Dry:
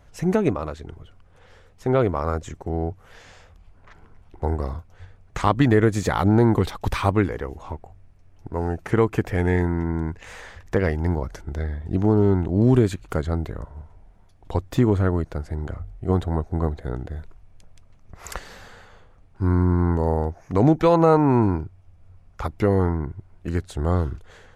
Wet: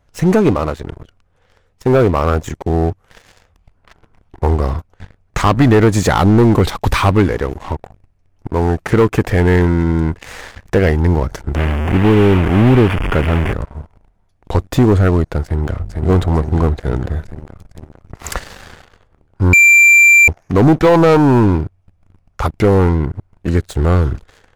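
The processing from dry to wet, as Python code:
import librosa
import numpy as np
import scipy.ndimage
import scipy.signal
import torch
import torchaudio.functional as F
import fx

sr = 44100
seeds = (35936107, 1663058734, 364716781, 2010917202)

y = fx.delta_mod(x, sr, bps=16000, step_db=-22.5, at=(11.55, 13.53))
y = fx.echo_throw(y, sr, start_s=15.44, length_s=0.6, ms=450, feedback_pct=70, wet_db=-4.5)
y = fx.edit(y, sr, fx.bleep(start_s=19.53, length_s=0.75, hz=2360.0, db=-11.5), tone=tone)
y = fx.leveller(y, sr, passes=3)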